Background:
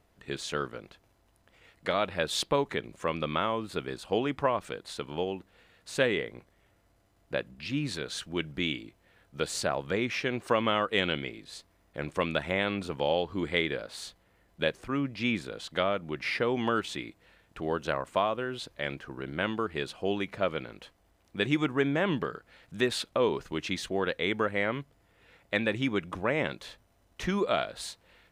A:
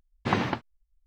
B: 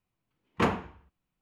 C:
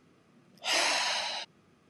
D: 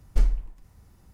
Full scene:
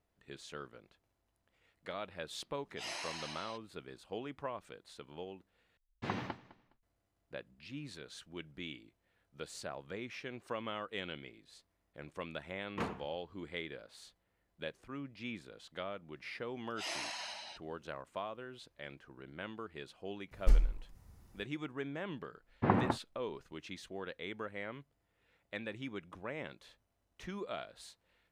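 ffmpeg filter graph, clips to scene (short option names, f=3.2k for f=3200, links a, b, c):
-filter_complex "[3:a]asplit=2[a][b];[1:a]asplit=2[c][d];[0:a]volume=-14dB[e];[c]aecho=1:1:207|414:0.112|0.0292[f];[d]lowpass=1.3k[g];[e]asplit=2[h][i];[h]atrim=end=5.774[j];[f]atrim=end=1.06,asetpts=PTS-STARTPTS,volume=-12.5dB[k];[i]atrim=start=6.826[l];[a]atrim=end=1.89,asetpts=PTS-STARTPTS,volume=-15dB,afade=t=in:d=0.004:c=hsin,afade=t=out:st=1.886:d=0.004:c=hsin,adelay=2130[m];[2:a]atrim=end=1.41,asetpts=PTS-STARTPTS,volume=-12.5dB,afade=t=in:d=0.004:c=hsin,afade=t=out:st=1.406:d=0.004:c=hsin,adelay=12180[n];[b]atrim=end=1.89,asetpts=PTS-STARTPTS,volume=-13dB,afade=t=in:d=0.004:c=hsin,afade=t=out:st=1.886:d=0.004:c=hsin,adelay=16130[o];[4:a]atrim=end=1.13,asetpts=PTS-STARTPTS,volume=-5dB,afade=t=in:d=0.004:c=hsin,afade=t=out:st=1.126:d=0.004:c=hsin,adelay=20310[p];[g]atrim=end=1.06,asetpts=PTS-STARTPTS,volume=-2.5dB,afade=t=in:d=0.004:c=hsin,afade=t=out:st=1.056:d=0.004:c=hsin,adelay=22370[q];[j][k]acrossfade=d=0.004:c1=hsin:c2=hsin[r];[r][l]acrossfade=d=0.004:c1=hsin:c2=hsin[s];[s][m][n][o][p][q]amix=inputs=6:normalize=0"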